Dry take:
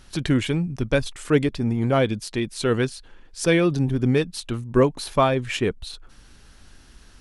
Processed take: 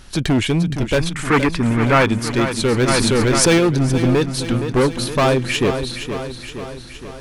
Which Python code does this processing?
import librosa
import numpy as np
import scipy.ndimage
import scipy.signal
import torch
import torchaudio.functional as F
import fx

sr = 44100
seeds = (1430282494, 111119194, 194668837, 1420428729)

p1 = np.clip(10.0 ** (19.5 / 20.0) * x, -1.0, 1.0) / 10.0 ** (19.5 / 20.0)
p2 = fx.band_shelf(p1, sr, hz=1500.0, db=9.0, octaves=1.7, at=(0.99, 2.07))
p3 = p2 + fx.echo_feedback(p2, sr, ms=468, feedback_pct=59, wet_db=-9, dry=0)
p4 = fx.env_flatten(p3, sr, amount_pct=70, at=(2.87, 3.57), fade=0.02)
y = F.gain(torch.from_numpy(p4), 7.0).numpy()